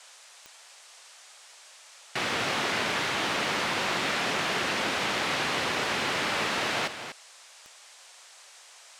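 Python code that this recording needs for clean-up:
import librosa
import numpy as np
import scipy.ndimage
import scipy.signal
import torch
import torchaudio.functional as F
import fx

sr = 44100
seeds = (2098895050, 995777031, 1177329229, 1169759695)

y = fx.fix_declip(x, sr, threshold_db=-17.5)
y = fx.fix_declick_ar(y, sr, threshold=10.0)
y = fx.noise_reduce(y, sr, print_start_s=0.15, print_end_s=0.65, reduce_db=26.0)
y = fx.fix_echo_inverse(y, sr, delay_ms=245, level_db=-10.0)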